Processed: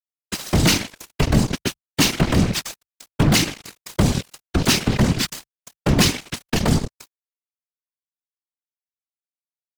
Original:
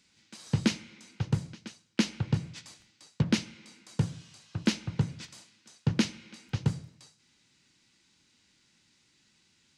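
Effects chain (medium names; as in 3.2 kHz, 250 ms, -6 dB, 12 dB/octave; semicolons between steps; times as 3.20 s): fuzz box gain 41 dB, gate -47 dBFS; whisper effect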